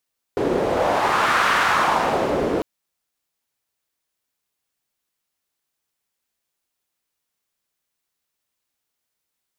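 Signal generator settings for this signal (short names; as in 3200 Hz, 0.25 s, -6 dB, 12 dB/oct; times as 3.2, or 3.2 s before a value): wind-like swept noise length 2.25 s, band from 400 Hz, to 1400 Hz, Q 2, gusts 1, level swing 3 dB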